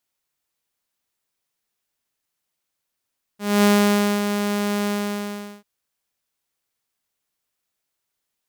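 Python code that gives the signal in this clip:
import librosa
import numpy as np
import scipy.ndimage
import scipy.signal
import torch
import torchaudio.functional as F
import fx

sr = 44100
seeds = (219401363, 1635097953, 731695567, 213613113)

y = fx.adsr_tone(sr, wave='saw', hz=205.0, attack_ms=243.0, decay_ms=580.0, sustain_db=-8.0, held_s=1.47, release_ms=771.0, level_db=-10.0)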